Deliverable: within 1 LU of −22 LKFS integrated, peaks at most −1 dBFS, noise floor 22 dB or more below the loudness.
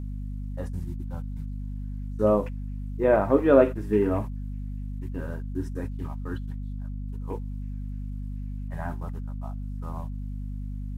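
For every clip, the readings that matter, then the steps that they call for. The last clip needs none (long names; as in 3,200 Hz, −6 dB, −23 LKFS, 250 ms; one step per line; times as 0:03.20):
mains hum 50 Hz; hum harmonics up to 250 Hz; level of the hum −31 dBFS; integrated loudness −29.0 LKFS; sample peak −4.5 dBFS; target loudness −22.0 LKFS
→ hum removal 50 Hz, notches 5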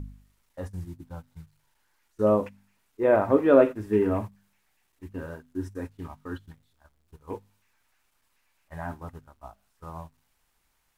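mains hum none found; integrated loudness −25.0 LKFS; sample peak −5.0 dBFS; target loudness −22.0 LKFS
→ level +3 dB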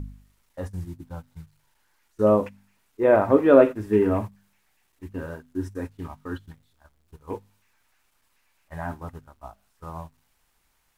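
integrated loudness −22.5 LKFS; sample peak −2.0 dBFS; background noise floor −69 dBFS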